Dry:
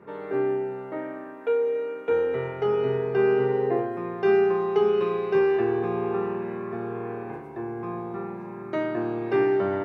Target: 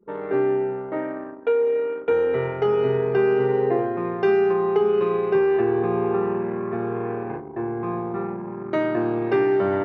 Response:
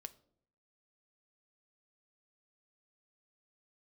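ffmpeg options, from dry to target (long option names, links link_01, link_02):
-filter_complex "[0:a]asettb=1/sr,asplit=3[link_01][link_02][link_03];[link_01]atrim=end=4.534[link_04];[link_02]atrim=start=4.53:end=6.72,asetpts=PTS-STARTPTS,afade=type=in:duration=0.004:curve=qsin,afade=type=out:start_time=2.186:duration=0.004:curve=qsin,lowpass=frequency=2500:poles=1[link_05];[link_03]atrim=start=6.716[link_06];[link_04][link_05]acrossfade=duration=0.004:curve1=hsin:curve2=qsin[link_07];[link_07][link_06]acrossfade=duration=0.004:curve1=qsin:curve2=hsin,anlmdn=1,acompressor=threshold=-23dB:ratio=2.5,volume=5.5dB"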